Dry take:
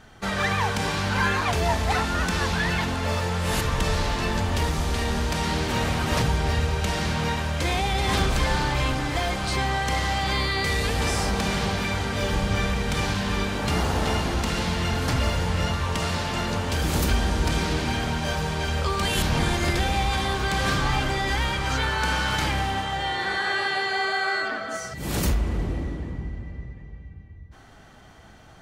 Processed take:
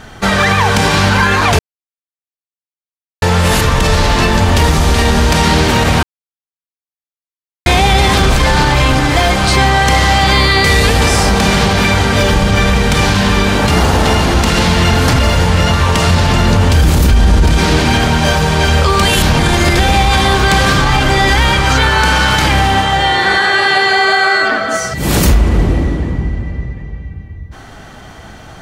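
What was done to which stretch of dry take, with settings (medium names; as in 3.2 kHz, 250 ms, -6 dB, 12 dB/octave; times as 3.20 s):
1.59–3.22 s: mute
6.03–7.66 s: mute
16.07–17.57 s: bass shelf 150 Hz +10 dB
whole clip: loudness maximiser +16.5 dB; trim -1 dB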